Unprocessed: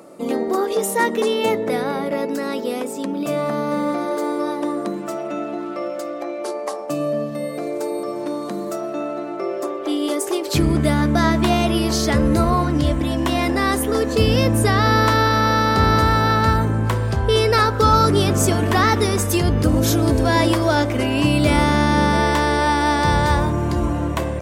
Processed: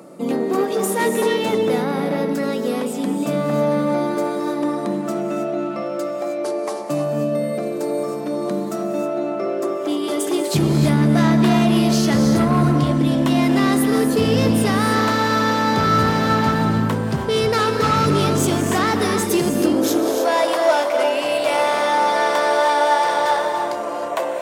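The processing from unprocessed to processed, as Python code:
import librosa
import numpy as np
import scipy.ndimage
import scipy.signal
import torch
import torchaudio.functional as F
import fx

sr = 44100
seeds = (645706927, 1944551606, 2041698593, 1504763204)

y = 10.0 ** (-14.5 / 20.0) * np.tanh(x / 10.0 ** (-14.5 / 20.0))
y = fx.rev_gated(y, sr, seeds[0], gate_ms=340, shape='rising', drr_db=4.5)
y = fx.filter_sweep_highpass(y, sr, from_hz=150.0, to_hz=600.0, start_s=19.09, end_s=20.4, q=2.1)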